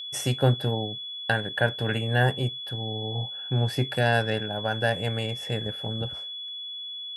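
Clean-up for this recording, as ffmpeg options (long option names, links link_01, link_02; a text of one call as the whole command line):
ffmpeg -i in.wav -af "bandreject=frequency=3400:width=30" out.wav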